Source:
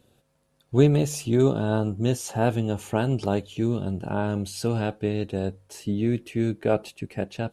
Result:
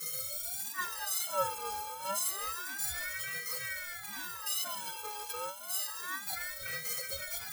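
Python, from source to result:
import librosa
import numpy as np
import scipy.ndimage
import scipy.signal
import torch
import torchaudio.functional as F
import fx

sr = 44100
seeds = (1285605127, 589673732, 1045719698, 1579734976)

p1 = x + 0.5 * 10.0 ** (-19.5 / 20.0) * np.diff(np.sign(x), prepend=np.sign(x[:1]))
p2 = fx.peak_eq(p1, sr, hz=2000.0, db=10.5, octaves=0.57)
p3 = fx.fold_sine(p2, sr, drive_db=14, ceiling_db=-5.0)
p4 = p2 + F.gain(torch.from_numpy(p3), -7.0).numpy()
p5 = fx.mod_noise(p4, sr, seeds[0], snr_db=12)
p6 = fx.low_shelf(p5, sr, hz=350.0, db=-10.0)
p7 = fx.fixed_phaser(p6, sr, hz=420.0, stages=4)
p8 = fx.stiff_resonator(p7, sr, f0_hz=370.0, decay_s=0.29, stiffness=0.03)
p9 = fx.echo_split(p8, sr, split_hz=1900.0, low_ms=270, high_ms=134, feedback_pct=52, wet_db=-12.0)
p10 = fx.ring_lfo(p9, sr, carrier_hz=1400.0, swing_pct=40, hz=0.29)
y = F.gain(torch.from_numpy(p10), -2.5).numpy()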